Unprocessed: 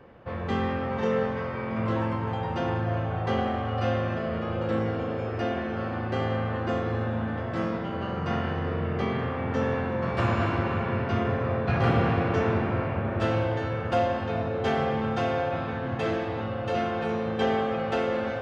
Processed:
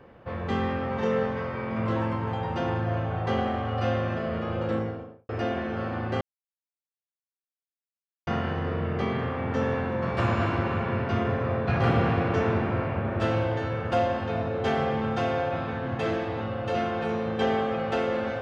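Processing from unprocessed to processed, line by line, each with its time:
0:04.62–0:05.29: fade out and dull
0:06.21–0:08.27: silence

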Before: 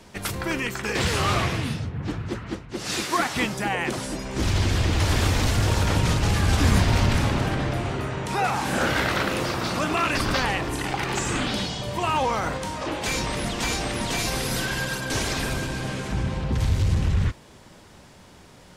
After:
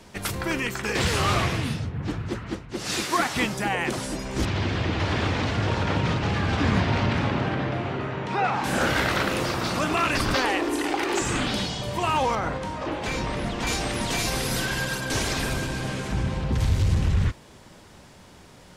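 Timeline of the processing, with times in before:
0:04.45–0:08.64: band-pass filter 110–3,400 Hz
0:10.36–0:11.22: low shelf with overshoot 220 Hz −11.5 dB, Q 3
0:12.35–0:13.67: low-pass filter 2,300 Hz 6 dB per octave

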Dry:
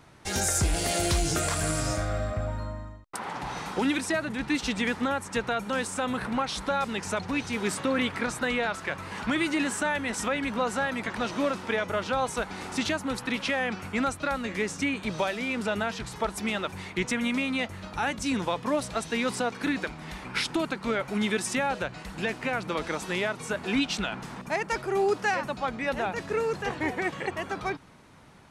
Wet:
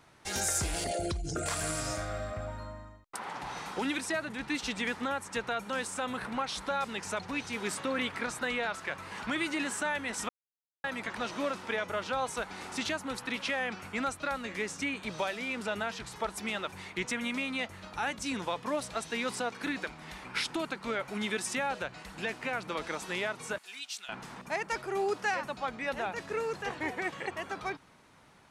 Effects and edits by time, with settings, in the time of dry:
0:00.84–0:01.46: spectral envelope exaggerated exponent 2
0:10.29–0:10.84: silence
0:23.58–0:24.09: first difference
whole clip: low-shelf EQ 360 Hz −6.5 dB; level −3.5 dB

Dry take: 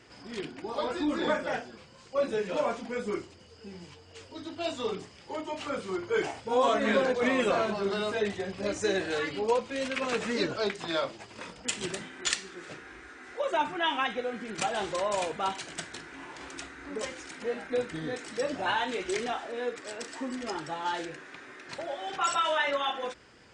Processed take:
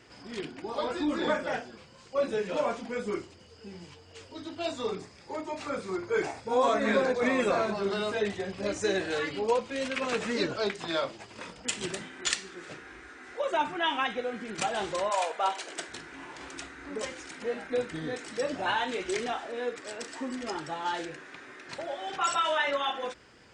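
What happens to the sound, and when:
0:04.67–0:07.77: notch filter 3,000 Hz, Q 5
0:15.09–0:15.87: high-pass with resonance 850 Hz → 350 Hz, resonance Q 1.7

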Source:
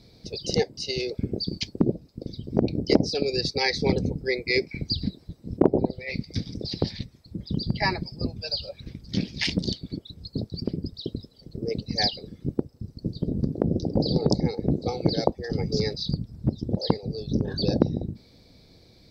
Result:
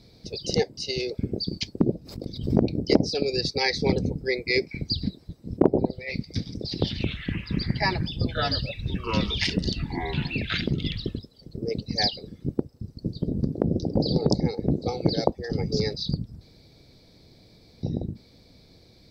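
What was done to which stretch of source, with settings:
0:01.93–0:02.68: background raised ahead of every attack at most 90 dB per second
0:06.58–0:11.19: delay with pitch and tempo change per echo 138 ms, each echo −5 semitones, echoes 3
0:16.41–0:17.83: fill with room tone

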